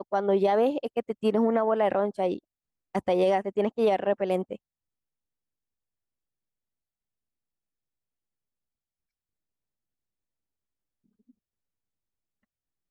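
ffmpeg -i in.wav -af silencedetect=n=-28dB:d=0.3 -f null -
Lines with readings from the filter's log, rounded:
silence_start: 2.36
silence_end: 2.95 | silence_duration: 0.58
silence_start: 4.55
silence_end: 12.91 | silence_duration: 8.35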